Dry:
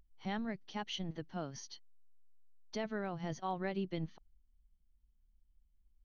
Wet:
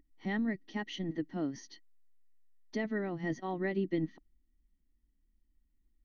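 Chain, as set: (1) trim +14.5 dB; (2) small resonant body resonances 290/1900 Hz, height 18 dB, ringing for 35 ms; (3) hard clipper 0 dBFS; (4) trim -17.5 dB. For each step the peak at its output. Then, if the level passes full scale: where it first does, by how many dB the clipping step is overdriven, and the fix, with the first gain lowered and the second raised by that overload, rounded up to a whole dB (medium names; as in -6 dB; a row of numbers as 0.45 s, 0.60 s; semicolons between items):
-10.5 dBFS, -4.5 dBFS, -4.5 dBFS, -22.0 dBFS; nothing clips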